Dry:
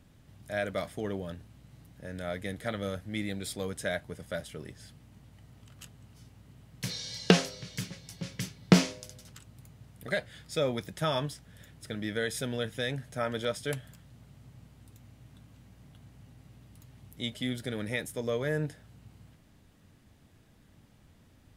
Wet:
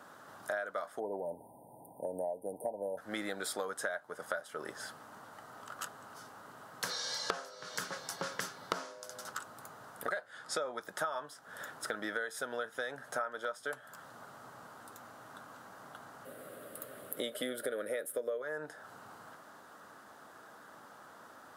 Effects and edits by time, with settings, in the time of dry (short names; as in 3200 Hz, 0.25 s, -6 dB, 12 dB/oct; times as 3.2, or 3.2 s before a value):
0.99–2.98 spectral delete 1000–8600 Hz
10.3–10.82 LPF 11000 Hz 24 dB/oct
16.25–18.42 EQ curve 120 Hz 0 dB, 370 Hz +6 dB, 560 Hz +12 dB, 860 Hz -10 dB, 1200 Hz -2 dB, 2200 Hz +3 dB, 3300 Hz +3 dB, 6200 Hz -7 dB, 9700 Hz +11 dB
whole clip: HPF 640 Hz 12 dB/oct; resonant high shelf 1800 Hz -8.5 dB, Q 3; compressor 12:1, threshold -50 dBFS; gain +16 dB